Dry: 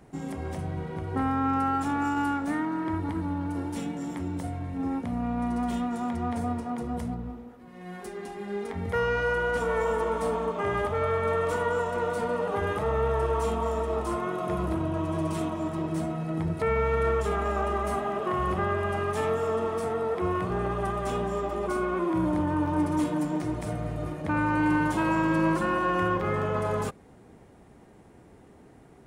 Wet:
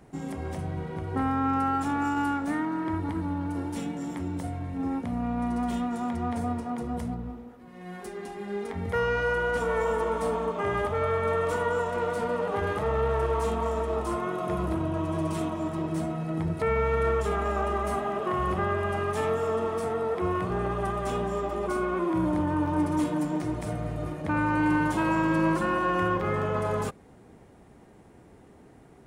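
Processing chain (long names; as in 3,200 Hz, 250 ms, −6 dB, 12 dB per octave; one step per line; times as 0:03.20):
0:11.88–0:13.94: phase distortion by the signal itself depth 0.069 ms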